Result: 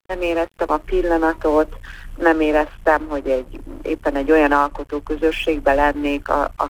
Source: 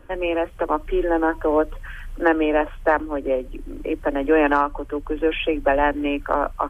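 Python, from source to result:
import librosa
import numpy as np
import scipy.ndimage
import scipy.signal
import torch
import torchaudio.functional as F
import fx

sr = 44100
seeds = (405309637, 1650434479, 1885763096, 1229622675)

y = np.sign(x) * np.maximum(np.abs(x) - 10.0 ** (-39.0 / 20.0), 0.0)
y = y * 10.0 ** (3.5 / 20.0)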